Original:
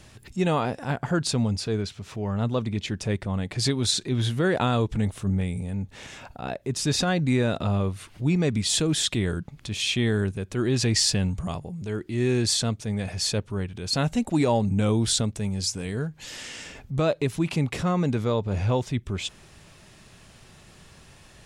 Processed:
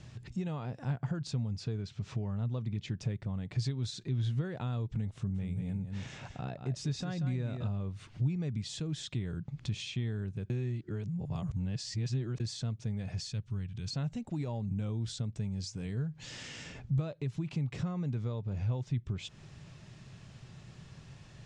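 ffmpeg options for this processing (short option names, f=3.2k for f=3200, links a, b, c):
-filter_complex "[0:a]asettb=1/sr,asplit=3[a][b][c];[a]atrim=end=5.164[d];[b]atrim=start=5.16:end=7.68,asetpts=PTS-STARTPTS,afade=t=in:d=0.004:c=qsin,afade=t=out:st=2.516:d=0.004:c=qsin,aecho=1:1:185:0.376,atrim=end_sample=111132[e];[c]atrim=start=7.676[f];[d][e]acrossfade=d=0.004:c1=hsin:c2=qsin[g];[g][f]acrossfade=d=0.004:c1=qsin:c2=hsin,asettb=1/sr,asplit=3[h][i][j];[h]atrim=end=13.214[k];[i]atrim=start=13.21:end=13.88,asetpts=PTS-STARTPTS,afade=t=in:d=0.004:c=qsin,afade=t=out:st=0.666:d=0.004:c=qsin,equalizer=f=540:w=0.43:g=-12[l];[j]atrim=start=13.876[m];[k][l]acrossfade=d=0.004:c1=hsin:c2=qsin[n];[n][m]acrossfade=d=0.004:c1=qsin:c2=hsin,asplit=3[o][p][q];[o]atrim=end=10.502[r];[p]atrim=start=10.498:end=12.402,asetpts=PTS-STARTPTS,areverse[s];[q]atrim=start=12.398[t];[r][s]acrossfade=d=0.004:c1=hsin:c2=hsin[u];[u][t]acrossfade=d=0.004:c1=hsin:c2=hsin,acompressor=threshold=-33dB:ratio=6,lowpass=f=7.3k:w=0.5412,lowpass=f=7.3k:w=1.3066,equalizer=f=130:t=o:w=1.1:g=13,volume=-6.5dB"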